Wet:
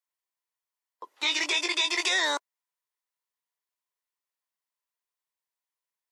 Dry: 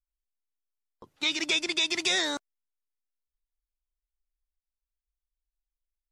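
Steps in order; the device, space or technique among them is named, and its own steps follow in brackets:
laptop speaker (high-pass filter 380 Hz 24 dB per octave; parametric band 1,000 Hz +11 dB 0.27 octaves; parametric band 1,900 Hz +6 dB 0.24 octaves; brickwall limiter −20.5 dBFS, peak gain reduction 6.5 dB)
0:01.10–0:02.09: double-tracking delay 20 ms −5 dB
level +3.5 dB

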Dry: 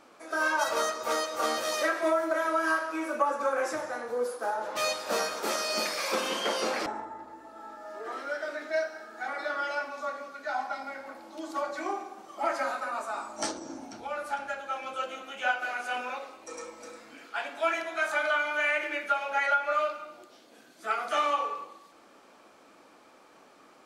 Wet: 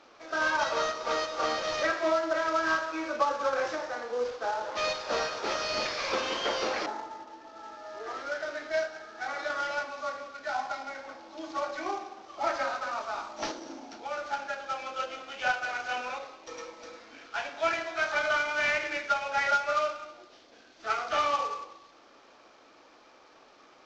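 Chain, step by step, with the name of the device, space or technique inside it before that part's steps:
early wireless headset (high-pass filter 270 Hz 12 dB per octave; variable-slope delta modulation 32 kbit/s)

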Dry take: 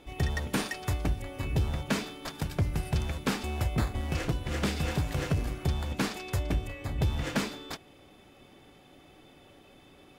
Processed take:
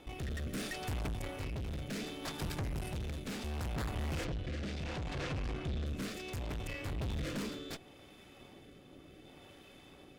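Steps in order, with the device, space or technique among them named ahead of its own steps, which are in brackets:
overdriven rotary cabinet (tube saturation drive 40 dB, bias 0.75; rotating-speaker cabinet horn 0.7 Hz)
0:04.25–0:05.86: low-pass filter 5,200 Hz 12 dB per octave
level +6 dB

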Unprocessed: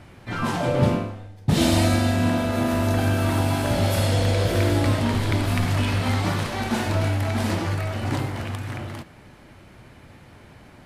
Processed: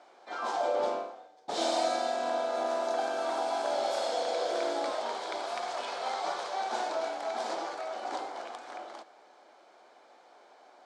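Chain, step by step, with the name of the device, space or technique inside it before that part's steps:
phone speaker on a table (loudspeaker in its box 420–7,300 Hz, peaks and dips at 740 Hz +8 dB, 1,900 Hz −8 dB, 2,700 Hz −9 dB)
0:04.90–0:06.73: parametric band 270 Hz −15 dB 0.26 octaves
level −6 dB

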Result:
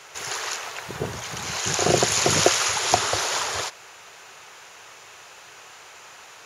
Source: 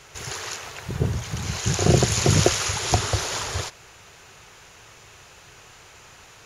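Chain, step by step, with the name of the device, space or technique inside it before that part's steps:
filter by subtraction (in parallel: low-pass filter 800 Hz 12 dB per octave + polarity inversion)
on the sum: level +2.5 dB

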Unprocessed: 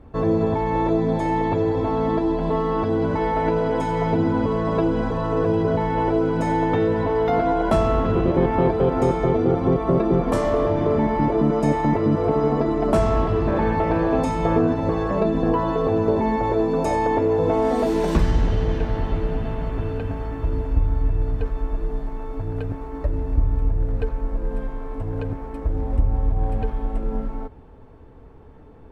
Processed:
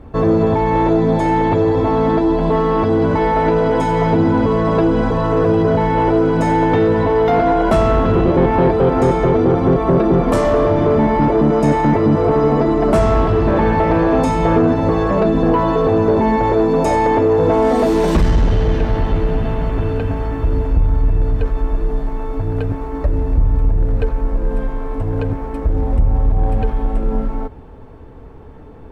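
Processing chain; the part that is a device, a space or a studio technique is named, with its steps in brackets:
saturation between pre-emphasis and de-emphasis (high-shelf EQ 2,200 Hz +11 dB; soft clipping −14 dBFS, distortion −17 dB; high-shelf EQ 2,200 Hz −11 dB)
level +8 dB

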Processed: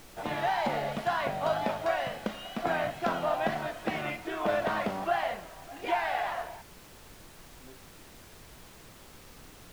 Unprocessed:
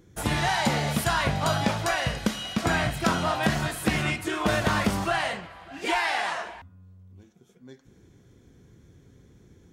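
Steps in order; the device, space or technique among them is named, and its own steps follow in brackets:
horn gramophone (band-pass filter 200–3,200 Hz; parametric band 660 Hz +8.5 dB 0.77 octaves; tape wow and flutter; pink noise bed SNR 18 dB)
level −7.5 dB

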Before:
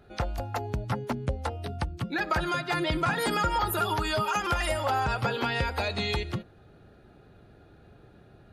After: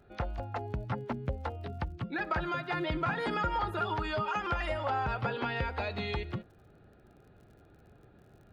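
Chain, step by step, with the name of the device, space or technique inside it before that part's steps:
lo-fi chain (low-pass filter 3,000 Hz 12 dB per octave; tape wow and flutter 14 cents; surface crackle 49 per second −49 dBFS)
level −4.5 dB

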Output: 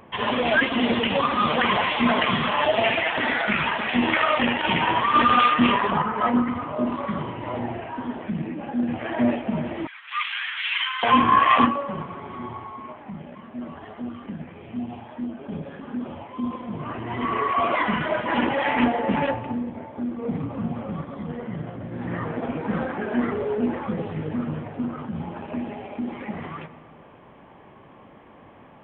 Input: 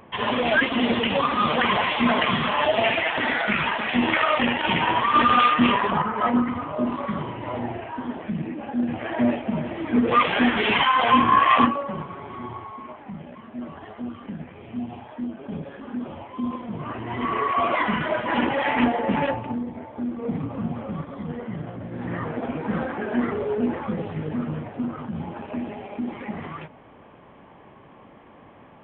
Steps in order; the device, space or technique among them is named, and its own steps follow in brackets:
compressed reverb return (on a send at −14 dB: convolution reverb RT60 1.6 s, pre-delay 77 ms + downward compressor, threshold −24 dBFS, peak gain reduction 11.5 dB)
0:09.87–0:11.03: on the sum: Bessel high-pass filter 2,100 Hz, order 8

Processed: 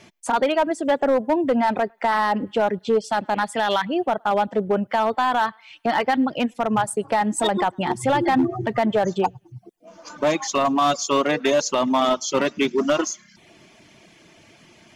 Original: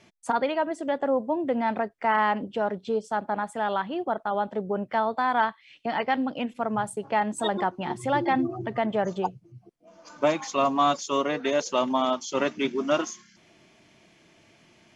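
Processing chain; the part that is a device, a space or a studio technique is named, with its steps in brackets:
high-shelf EQ 8,400 Hz +4 dB
feedback echo with a high-pass in the loop 106 ms, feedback 48%, high-pass 820 Hz, level −22 dB
0:03.00–0:03.85: flat-topped bell 3,100 Hz +9 dB
reverb reduction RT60 0.55 s
limiter into clipper (brickwall limiter −17 dBFS, peak gain reduction 7 dB; hard clipping −21 dBFS, distortion −18 dB)
level +8 dB

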